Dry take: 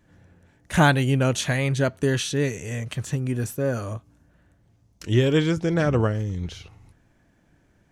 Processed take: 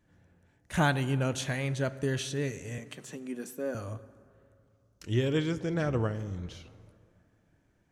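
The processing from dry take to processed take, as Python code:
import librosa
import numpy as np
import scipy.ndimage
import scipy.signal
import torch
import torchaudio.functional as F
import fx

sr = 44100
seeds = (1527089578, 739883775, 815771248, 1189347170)

y = fx.ellip_highpass(x, sr, hz=180.0, order=4, stop_db=40, at=(2.78, 3.75))
y = fx.rev_plate(y, sr, seeds[0], rt60_s=2.4, hf_ratio=0.5, predelay_ms=0, drr_db=14.5)
y = y * librosa.db_to_amplitude(-8.5)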